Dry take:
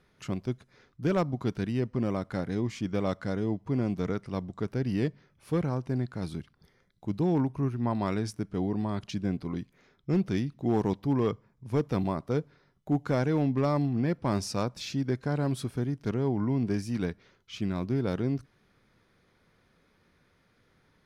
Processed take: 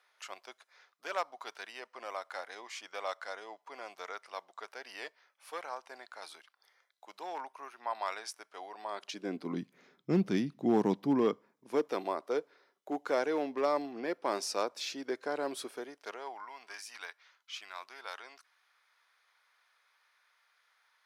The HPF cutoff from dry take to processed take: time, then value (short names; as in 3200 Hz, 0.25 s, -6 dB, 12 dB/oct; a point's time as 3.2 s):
HPF 24 dB/oct
8.75 s 690 Hz
9.62 s 180 Hz
10.98 s 180 Hz
12.02 s 380 Hz
15.67 s 380 Hz
16.5 s 870 Hz